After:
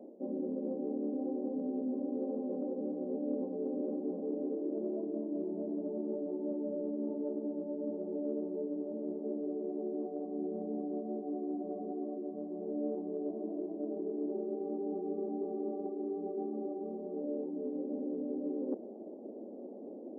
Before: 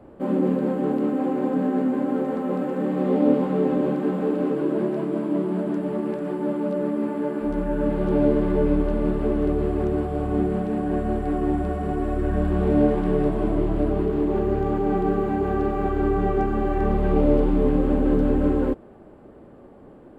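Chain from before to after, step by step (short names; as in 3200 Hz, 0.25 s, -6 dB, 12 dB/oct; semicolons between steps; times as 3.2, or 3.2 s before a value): steep low-pass 680 Hz 36 dB/oct; reverse; compressor 6:1, threshold -36 dBFS, peak gain reduction 20.5 dB; reverse; brick-wall FIR high-pass 200 Hz; gain +2 dB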